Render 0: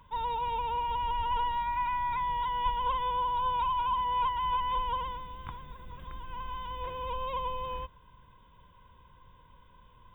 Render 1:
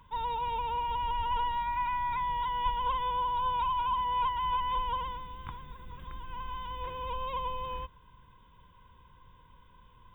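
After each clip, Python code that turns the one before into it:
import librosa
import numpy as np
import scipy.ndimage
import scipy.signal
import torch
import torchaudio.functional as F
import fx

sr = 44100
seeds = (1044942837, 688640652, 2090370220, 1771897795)

y = fx.peak_eq(x, sr, hz=620.0, db=-6.0, octaves=0.45)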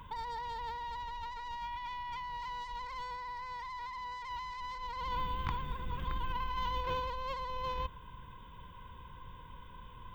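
y = fx.self_delay(x, sr, depth_ms=0.23)
y = fx.over_compress(y, sr, threshold_db=-40.0, ratio=-1.0)
y = F.gain(torch.from_numpy(y), 1.0).numpy()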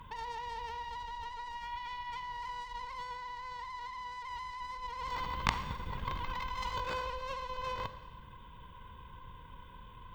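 y = fx.cheby_harmonics(x, sr, harmonics=(2, 3, 5, 7), levels_db=(-7, -6, -23, -30), full_scale_db=-19.5)
y = fx.rev_schroeder(y, sr, rt60_s=1.2, comb_ms=29, drr_db=11.0)
y = F.gain(torch.from_numpy(y), 8.0).numpy()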